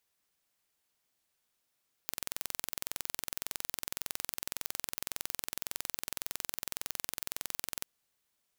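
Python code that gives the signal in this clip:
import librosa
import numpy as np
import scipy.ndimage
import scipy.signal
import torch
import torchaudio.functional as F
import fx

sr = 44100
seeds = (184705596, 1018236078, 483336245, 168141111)

y = 10.0 ** (-7.5 / 20.0) * (np.mod(np.arange(round(5.78 * sr)), round(sr / 21.8)) == 0)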